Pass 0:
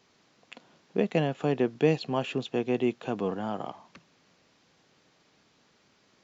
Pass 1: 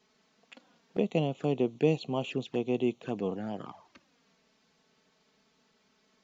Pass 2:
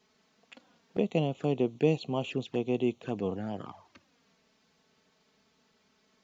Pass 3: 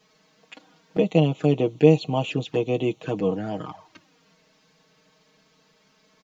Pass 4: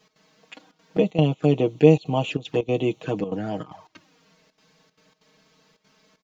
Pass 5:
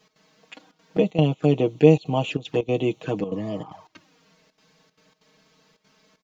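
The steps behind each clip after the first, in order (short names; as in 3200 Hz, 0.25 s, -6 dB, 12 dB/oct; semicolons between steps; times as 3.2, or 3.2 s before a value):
envelope flanger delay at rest 4.8 ms, full sweep at -26.5 dBFS; gain -1.5 dB
bell 94 Hz +9.5 dB 0.37 oct
comb 6.4 ms, depth 73%; gain +6 dB
step gate "x.xxxxxxx.xxxx.x" 190 bpm -12 dB; gain +1 dB
spectral repair 3.31–3.68, 670–1700 Hz both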